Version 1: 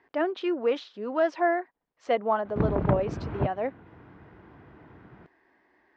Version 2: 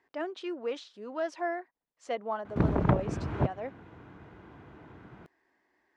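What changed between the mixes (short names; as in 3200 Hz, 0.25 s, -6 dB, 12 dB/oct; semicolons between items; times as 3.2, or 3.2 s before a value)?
speech -9.0 dB; master: remove air absorption 180 m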